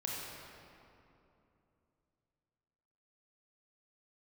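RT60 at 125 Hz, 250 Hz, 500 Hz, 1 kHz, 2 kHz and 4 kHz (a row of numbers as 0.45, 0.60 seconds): 3.7, 3.5, 3.0, 2.7, 2.1, 1.6 seconds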